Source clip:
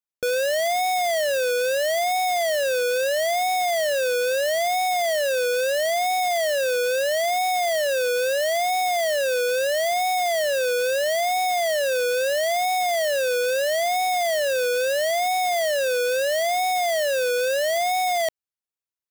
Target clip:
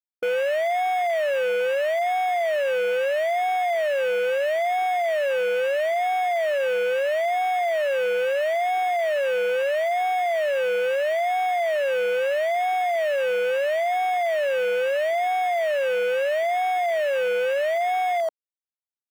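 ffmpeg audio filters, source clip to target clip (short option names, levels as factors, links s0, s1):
-af "afwtdn=0.0398"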